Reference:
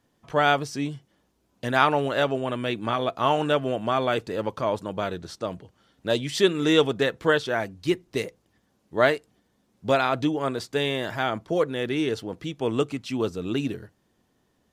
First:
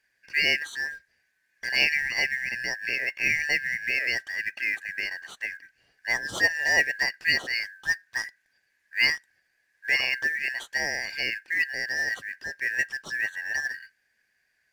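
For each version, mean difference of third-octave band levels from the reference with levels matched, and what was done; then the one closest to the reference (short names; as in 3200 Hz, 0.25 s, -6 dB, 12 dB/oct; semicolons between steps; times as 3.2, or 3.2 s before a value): 14.5 dB: four-band scrambler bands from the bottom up 3142; in parallel at -3.5 dB: short-mantissa float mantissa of 2-bit; on the sum: gain -7.5 dB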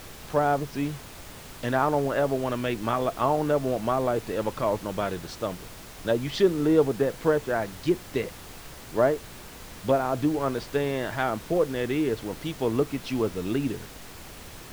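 7.0 dB: treble ducked by the level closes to 880 Hz, closed at -19 dBFS; added noise pink -43 dBFS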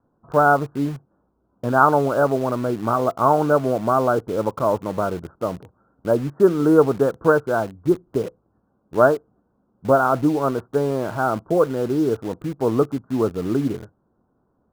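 5.0 dB: steep low-pass 1500 Hz 96 dB/oct; in parallel at -7 dB: bit-crush 6-bit; on the sum: gain +2.5 dB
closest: third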